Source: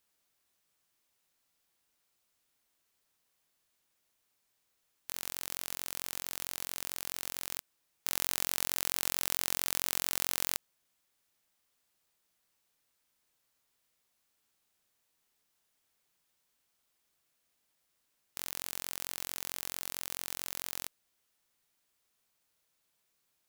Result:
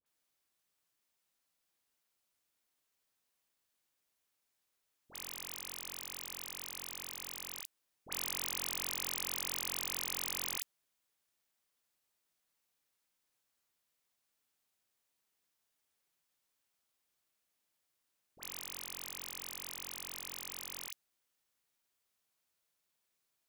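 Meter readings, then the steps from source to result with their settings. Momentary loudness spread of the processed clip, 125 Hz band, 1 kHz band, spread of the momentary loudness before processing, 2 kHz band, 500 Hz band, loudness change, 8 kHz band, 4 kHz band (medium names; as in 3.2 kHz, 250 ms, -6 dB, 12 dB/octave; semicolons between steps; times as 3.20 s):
9 LU, -7.0 dB, -5.0 dB, 9 LU, -5.0 dB, -5.5 dB, -5.0 dB, -5.0 dB, -5.0 dB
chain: bass shelf 180 Hz -3 dB; phase dispersion highs, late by 61 ms, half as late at 1.2 kHz; trim -5 dB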